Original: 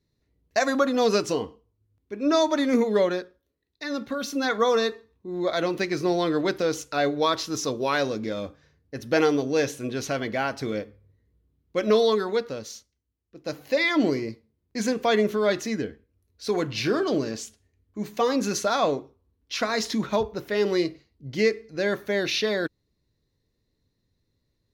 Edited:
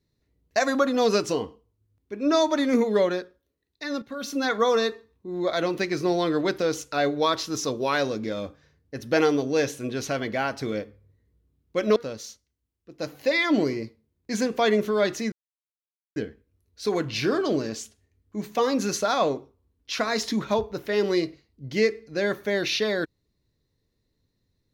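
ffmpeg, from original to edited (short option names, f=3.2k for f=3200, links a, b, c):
-filter_complex "[0:a]asplit=4[a][b][c][d];[a]atrim=end=4.02,asetpts=PTS-STARTPTS,afade=t=out:st=4.016:d=0.004:c=hsin:silence=0.237137[e];[b]atrim=start=4.02:end=11.962,asetpts=PTS-STARTPTS,afade=t=in:d=0.3:silence=0.237137[f];[c]atrim=start=12.418:end=15.78,asetpts=PTS-STARTPTS,afade=t=out:st=3.358:d=0.004:c=hsin,apad=pad_dur=0.84[g];[d]atrim=start=15.78,asetpts=PTS-STARTPTS,afade=t=in:d=0.004:c=hsin[h];[e][f]concat=n=2:v=0:a=1[i];[g][h]concat=n=2:v=0:a=1[j];[i][j]acrossfade=d=0.004:c1=hsin:c2=hsin"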